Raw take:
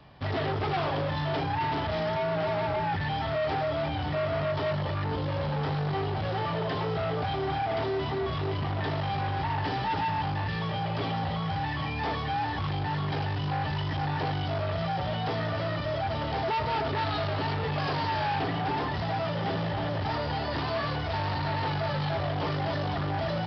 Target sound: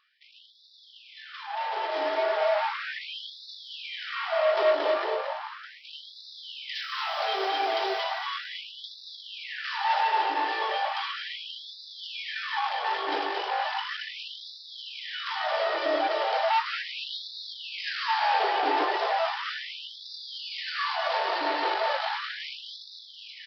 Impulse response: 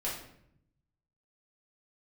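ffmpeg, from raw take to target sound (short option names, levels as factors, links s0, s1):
-filter_complex "[0:a]asplit=3[s0][s1][s2];[s0]afade=t=out:st=6.74:d=0.02[s3];[s1]aemphasis=mode=production:type=riaa,afade=t=in:st=6.74:d=0.02,afade=t=out:st=8.03:d=0.02[s4];[s2]afade=t=in:st=8.03:d=0.02[s5];[s3][s4][s5]amix=inputs=3:normalize=0,alimiter=level_in=1.41:limit=0.0631:level=0:latency=1:release=473,volume=0.708,asettb=1/sr,asplit=3[s6][s7][s8];[s6]atrim=end=5.104[s9];[s7]atrim=start=5.1:end=5.84,asetpts=PTS-STARTPTS,afade=t=in:d=0.004:c=qsin,afade=t=out:st=0.736:d=0.004:c=qsin,equalizer=f=3900:w=0.46:g=-11.5[s10];[s8]atrim=start=5.836[s11];[s9][s10]acrossfade=d=0.004:c1=hsin:c2=qsin[s12];[s12][s11]acrossfade=d=0.004:c1=qsin:c2=hsin,aecho=1:1:227|454|681|908|1135|1362:0.562|0.27|0.13|0.0622|0.0299|0.0143,dynaudnorm=f=220:g=17:m=5.62,afftfilt=real='re*gte(b*sr/1024,290*pow(3500/290,0.5+0.5*sin(2*PI*0.36*pts/sr)))':imag='im*gte(b*sr/1024,290*pow(3500/290,0.5+0.5*sin(2*PI*0.36*pts/sr)))':win_size=1024:overlap=0.75,volume=0.422"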